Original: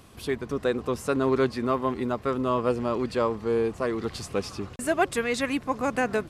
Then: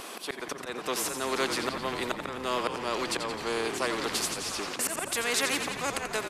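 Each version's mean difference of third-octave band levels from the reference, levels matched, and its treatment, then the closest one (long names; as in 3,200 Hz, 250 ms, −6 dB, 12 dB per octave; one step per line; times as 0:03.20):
11.0 dB: high-pass filter 340 Hz 24 dB per octave
volume swells 292 ms
echo with shifted repeats 87 ms, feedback 63%, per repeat −41 Hz, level −12 dB
every bin compressed towards the loudest bin 2 to 1
level +1.5 dB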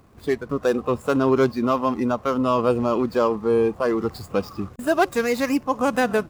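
4.5 dB: running median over 15 samples
noise reduction from a noise print of the clip's start 9 dB
high-shelf EQ 7,700 Hz +6 dB
in parallel at −1 dB: brickwall limiter −23 dBFS, peak gain reduction 11 dB
on the sum: level +2.5 dB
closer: second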